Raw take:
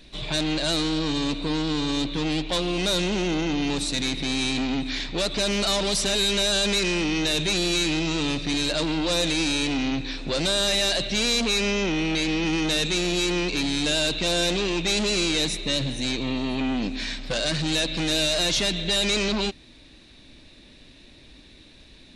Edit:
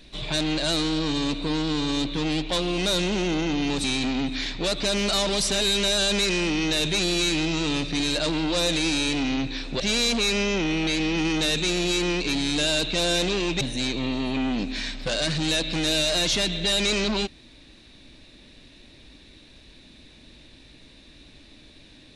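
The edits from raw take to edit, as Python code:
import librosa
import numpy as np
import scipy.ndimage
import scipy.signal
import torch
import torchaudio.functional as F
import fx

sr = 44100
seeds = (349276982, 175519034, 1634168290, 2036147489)

y = fx.edit(x, sr, fx.cut(start_s=3.84, length_s=0.54),
    fx.cut(start_s=10.34, length_s=0.74),
    fx.cut(start_s=14.89, length_s=0.96), tone=tone)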